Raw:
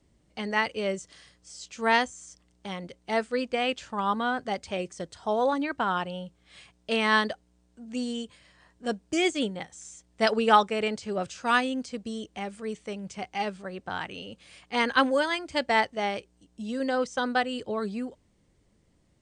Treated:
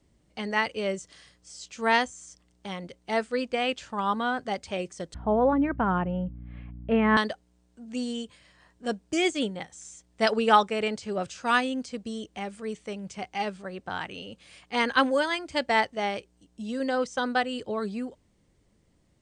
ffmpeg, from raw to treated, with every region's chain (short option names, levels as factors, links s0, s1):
-filter_complex "[0:a]asettb=1/sr,asplit=3[s0][s1][s2];[s0]atrim=end=5.144[s3];[s1]atrim=start=5.14:end=7.17,asetpts=PTS-STARTPTS,afade=t=in:d=0.004:c=qsin,afade=t=out:st=2.026:d=0.004:c=qsin,lowpass=f=2500:w=0.5412,lowpass=f=2500:w=1.3066,aemphasis=mode=reproduction:type=riaa,aeval=exprs='val(0)+0.00891*(sin(2*PI*60*n/s)+sin(2*PI*2*60*n/s)/2+sin(2*PI*3*60*n/s)/3+sin(2*PI*4*60*n/s)/4+sin(2*PI*5*60*n/s)/5)':c=same[s4];[s2]atrim=start=7.166[s5];[s3][s4]acrossfade=d=0.004:c1=hsin:c2=qsin[s6];[s6][s5]acrossfade=d=0.004:c1=qsin:c2=hsin"